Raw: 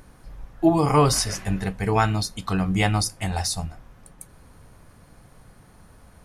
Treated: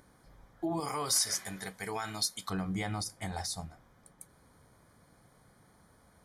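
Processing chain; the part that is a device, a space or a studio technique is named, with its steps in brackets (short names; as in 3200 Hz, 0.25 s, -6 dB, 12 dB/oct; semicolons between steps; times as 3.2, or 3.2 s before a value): PA system with an anti-feedback notch (HPF 140 Hz 6 dB/oct; Butterworth band-stop 2700 Hz, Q 5.2; limiter -17 dBFS, peak gain reduction 10 dB); 0.8–2.5 tilt +3 dB/oct; gain -8.5 dB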